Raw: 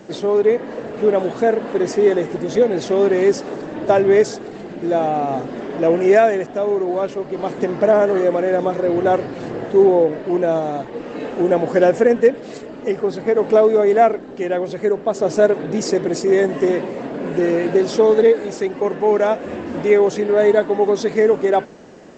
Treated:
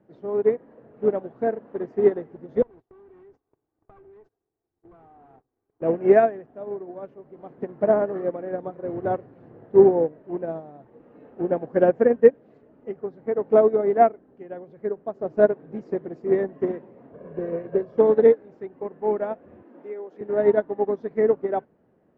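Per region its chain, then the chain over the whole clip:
0:02.62–0:05.82: lower of the sound and its delayed copy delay 2.6 ms + noise gate −24 dBFS, range −30 dB + downward compressor 10 to 1, threshold −26 dBFS
0:17.13–0:17.98: high-shelf EQ 2,000 Hz −5.5 dB + comb filter 1.8 ms, depth 62% + multiband upward and downward compressor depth 40%
0:19.62–0:20.21: high-pass filter 250 Hz 24 dB per octave + downward compressor 3 to 1, threshold −18 dBFS
whole clip: low-pass filter 1,500 Hz 12 dB per octave; parametric band 100 Hz +7.5 dB 1.6 octaves; expander for the loud parts 2.5 to 1, over −22 dBFS

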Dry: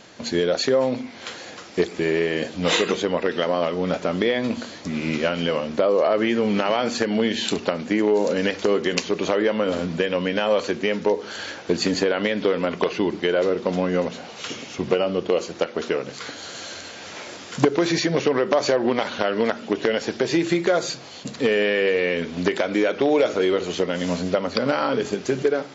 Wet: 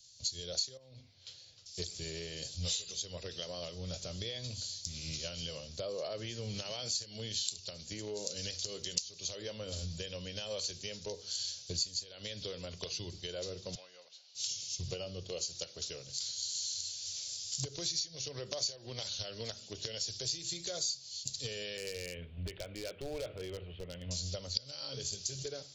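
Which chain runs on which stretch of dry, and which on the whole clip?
0:00.77–0:01.66: low-pass filter 3,000 Hz + downward compressor 12 to 1, threshold −26 dBFS
0:13.75–0:14.35: high-pass filter 860 Hz + high-frequency loss of the air 180 metres
0:21.77–0:24.11: Butterworth low-pass 2,900 Hz 48 dB per octave + gain into a clipping stage and back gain 14 dB
whole clip: drawn EQ curve 110 Hz 0 dB, 240 Hz −28 dB, 590 Hz −20 dB, 830 Hz −27 dB, 1,200 Hz −27 dB, 2,000 Hz −23 dB, 4,600 Hz +5 dB; downward compressor 12 to 1, threshold −34 dBFS; multiband upward and downward expander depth 70%

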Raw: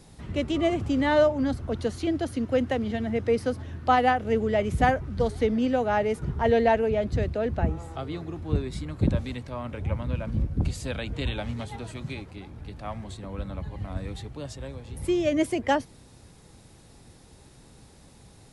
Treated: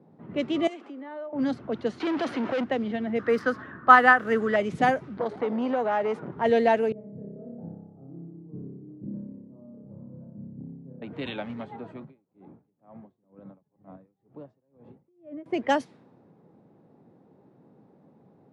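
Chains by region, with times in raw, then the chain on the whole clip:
0:00.67–0:01.33: Butterworth high-pass 260 Hz + tilt shelving filter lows −4.5 dB, about 1,300 Hz + downward compressor 2.5 to 1, threshold −41 dBFS
0:02.00–0:02.64: downward compressor 12 to 1, threshold −26 dBFS + mid-hump overdrive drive 27 dB, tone 4,800 Hz, clips at −20.5 dBFS
0:03.19–0:04.56: running median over 5 samples + flat-topped bell 1,400 Hz +13 dB 1 octave
0:05.17–0:06.32: parametric band 810 Hz +8 dB 2.5 octaves + downward compressor 3 to 1, threshold −23 dBFS + saturating transformer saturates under 500 Hz
0:06.92–0:11.02: four-pole ladder band-pass 160 Hz, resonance 20% + flutter between parallel walls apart 5.1 metres, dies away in 1.3 s
0:12.02–0:15.46: downward compressor, threshold −35 dBFS + tremolo with a sine in dB 2.1 Hz, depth 31 dB
whole clip: low-pass that shuts in the quiet parts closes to 670 Hz, open at −18.5 dBFS; high-pass filter 160 Hz 24 dB per octave

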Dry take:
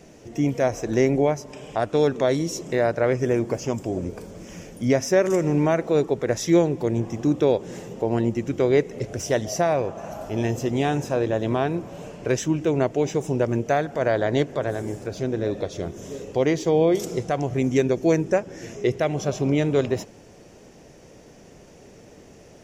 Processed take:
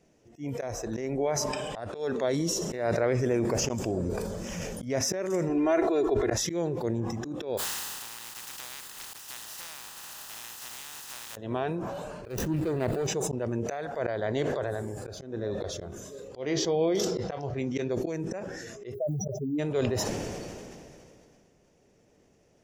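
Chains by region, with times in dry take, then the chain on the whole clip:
0:02.33–0:04.99: delay with a high-pass on its return 66 ms, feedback 67%, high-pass 2,800 Hz, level −15 dB + envelope flattener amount 50%
0:05.49–0:06.34: high-shelf EQ 4,200 Hz −4.5 dB + comb filter 2.9 ms, depth 86%
0:07.57–0:11.35: compressing power law on the bin magnitudes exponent 0.14 + downward compressor 10 to 1, threshold −30 dBFS
0:12.25–0:13.07: running median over 41 samples + high-shelf EQ 11,000 Hz +11.5 dB + level that may fall only so fast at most 23 dB per second
0:16.40–0:17.90: high shelf with overshoot 6,800 Hz −9 dB, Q 1.5 + double-tracking delay 21 ms −11 dB
0:18.93–0:19.58: expanding power law on the bin magnitudes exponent 3.2 + background noise violet −63 dBFS
whole clip: noise reduction from a noise print of the clip's start 9 dB; volume swells 168 ms; level that may fall only so fast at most 23 dB per second; level −7.5 dB

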